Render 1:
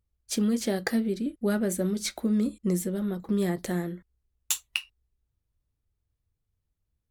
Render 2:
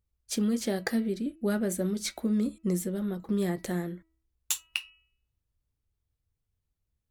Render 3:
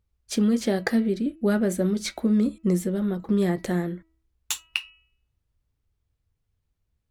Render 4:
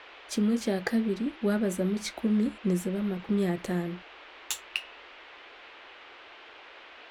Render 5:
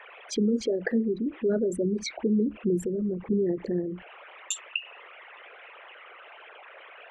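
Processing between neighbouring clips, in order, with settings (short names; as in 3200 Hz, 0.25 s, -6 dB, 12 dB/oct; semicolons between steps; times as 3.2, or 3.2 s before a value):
de-hum 324.5 Hz, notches 9; gain -2 dB
high shelf 6100 Hz -9.5 dB; gain +6 dB
band noise 320–3100 Hz -45 dBFS; gain -4.5 dB
formant sharpening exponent 3; gain +1.5 dB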